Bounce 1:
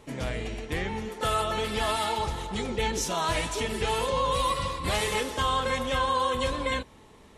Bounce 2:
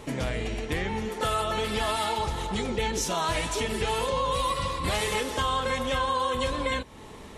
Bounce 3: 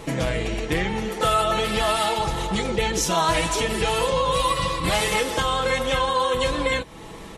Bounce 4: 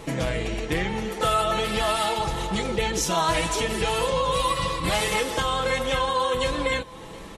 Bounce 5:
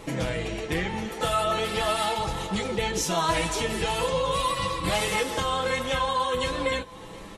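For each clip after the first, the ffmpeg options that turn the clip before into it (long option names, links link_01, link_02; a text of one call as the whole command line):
ffmpeg -i in.wav -af "acompressor=threshold=-41dB:ratio=2,volume=9dB" out.wav
ffmpeg -i in.wav -af "aecho=1:1:6.1:0.46,volume=5dB" out.wav
ffmpeg -i in.wav -af "aecho=1:1:719:0.075,volume=-2dB" out.wav
ffmpeg -i in.wav -af "flanger=delay=9.8:depth=2.9:regen=-40:speed=0.41:shape=sinusoidal,volume=2dB" out.wav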